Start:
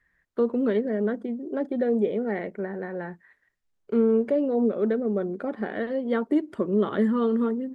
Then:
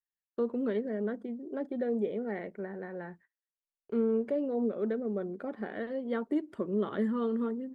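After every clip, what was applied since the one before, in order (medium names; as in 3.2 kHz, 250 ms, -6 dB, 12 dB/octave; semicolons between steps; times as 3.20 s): gate -49 dBFS, range -30 dB; trim -7.5 dB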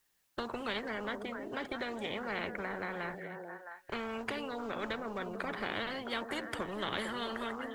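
repeats whose band climbs or falls 221 ms, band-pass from 170 Hz, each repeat 1.4 oct, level -10 dB; spectrum-flattening compressor 4:1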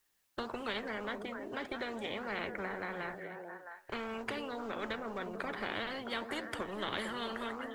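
peaking EQ 160 Hz -6 dB 0.26 oct; flange 1.7 Hz, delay 4.5 ms, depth 6.4 ms, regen +87%; trim +3.5 dB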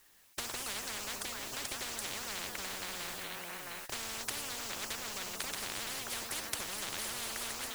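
gate -59 dBFS, range -16 dB; spectrum-flattening compressor 10:1; trim +5.5 dB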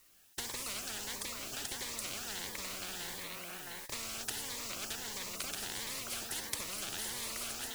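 Shepard-style phaser rising 1.5 Hz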